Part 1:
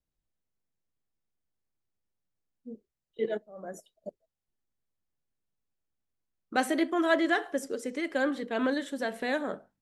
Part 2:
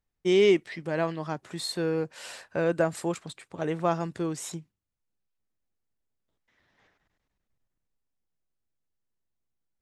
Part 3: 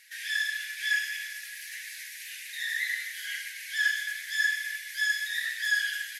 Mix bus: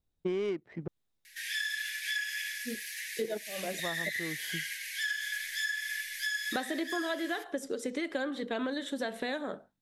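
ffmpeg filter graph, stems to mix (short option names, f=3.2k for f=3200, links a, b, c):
-filter_complex "[0:a]equalizer=f=3.7k:w=5.5:g=8.5,dynaudnorm=f=190:g=9:m=5dB,volume=-1dB,asplit=2[a][b];[1:a]highshelf=f=6.8k:g=11,adynamicsmooth=sensitivity=1:basefreq=770,volume=2.5dB,asplit=3[c][d][e];[c]atrim=end=0.88,asetpts=PTS-STARTPTS,afade=t=out:st=0.876:d=0.004:c=hsin[f];[d]atrim=start=0.88:end=3.79,asetpts=PTS-STARTPTS,volume=0[g];[e]atrim=start=3.79,asetpts=PTS-STARTPTS,afade=t=in:d=0.004:c=hsin[h];[f][g][h]concat=n=3:v=0:a=1[i];[2:a]highpass=1.5k,adelay=1250,volume=1dB[j];[b]apad=whole_len=432738[k];[i][k]sidechaincompress=threshold=-41dB:ratio=8:attack=16:release=1070[l];[a][l][j]amix=inputs=3:normalize=0,acompressor=threshold=-30dB:ratio=12"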